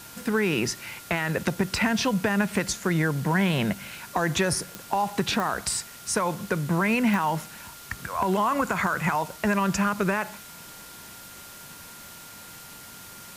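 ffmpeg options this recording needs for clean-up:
-af "adeclick=t=4,bandreject=f=1.4k:w=30,afwtdn=0.0063"

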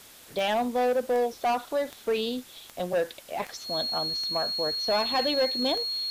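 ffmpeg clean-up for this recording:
-af "adeclick=t=4,bandreject=f=4.3k:w=30,afftdn=nr=24:nf=-49"

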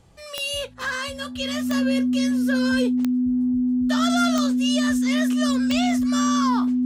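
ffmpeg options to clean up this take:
-af "adeclick=t=4,bandreject=f=250:w=30"

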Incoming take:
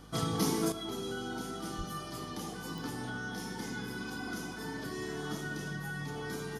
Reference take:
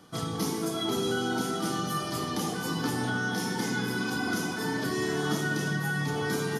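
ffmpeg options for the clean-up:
-filter_complex "[0:a]adeclick=t=4,bandreject=f=51.8:t=h:w=4,bandreject=f=103.6:t=h:w=4,bandreject=f=155.4:t=h:w=4,bandreject=f=207.2:t=h:w=4,bandreject=f=259:t=h:w=4,asplit=3[a][b][c];[a]afade=t=out:st=1.77:d=0.02[d];[b]highpass=f=140:w=0.5412,highpass=f=140:w=1.3066,afade=t=in:st=1.77:d=0.02,afade=t=out:st=1.89:d=0.02[e];[c]afade=t=in:st=1.89:d=0.02[f];[d][e][f]amix=inputs=3:normalize=0,asetnsamples=n=441:p=0,asendcmd='0.72 volume volume 9.5dB',volume=0dB"

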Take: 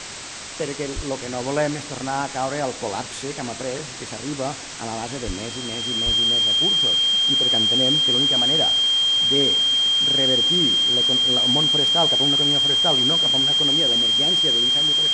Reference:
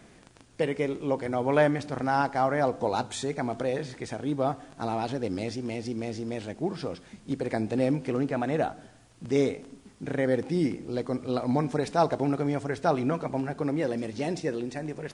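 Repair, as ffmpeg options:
-filter_complex "[0:a]bandreject=f=3.2k:w=30,asplit=3[a][b][c];[a]afade=t=out:st=0.95:d=0.02[d];[b]highpass=f=140:w=0.5412,highpass=f=140:w=1.3066,afade=t=in:st=0.95:d=0.02,afade=t=out:st=1.07:d=0.02[e];[c]afade=t=in:st=1.07:d=0.02[f];[d][e][f]amix=inputs=3:normalize=0,asplit=3[g][h][i];[g]afade=t=out:st=5.26:d=0.02[j];[h]highpass=f=140:w=0.5412,highpass=f=140:w=1.3066,afade=t=in:st=5.26:d=0.02,afade=t=out:st=5.38:d=0.02[k];[i]afade=t=in:st=5.38:d=0.02[l];[j][k][l]amix=inputs=3:normalize=0,asplit=3[m][n][o];[m]afade=t=out:st=6.05:d=0.02[p];[n]highpass=f=140:w=0.5412,highpass=f=140:w=1.3066,afade=t=in:st=6.05:d=0.02,afade=t=out:st=6.17:d=0.02[q];[o]afade=t=in:st=6.17:d=0.02[r];[p][q][r]amix=inputs=3:normalize=0,afwtdn=0.028"

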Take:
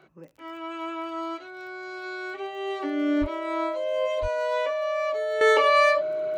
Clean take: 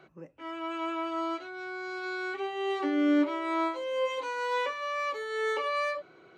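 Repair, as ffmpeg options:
-filter_complex "[0:a]adeclick=t=4,bandreject=f=620:w=30,asplit=3[a][b][c];[a]afade=t=out:st=3.2:d=0.02[d];[b]highpass=f=140:w=0.5412,highpass=f=140:w=1.3066,afade=t=in:st=3.2:d=0.02,afade=t=out:st=3.32:d=0.02[e];[c]afade=t=in:st=3.32:d=0.02[f];[d][e][f]amix=inputs=3:normalize=0,asplit=3[g][h][i];[g]afade=t=out:st=4.21:d=0.02[j];[h]highpass=f=140:w=0.5412,highpass=f=140:w=1.3066,afade=t=in:st=4.21:d=0.02,afade=t=out:st=4.33:d=0.02[k];[i]afade=t=in:st=4.33:d=0.02[l];[j][k][l]amix=inputs=3:normalize=0,asetnsamples=n=441:p=0,asendcmd='5.41 volume volume -11dB',volume=0dB"

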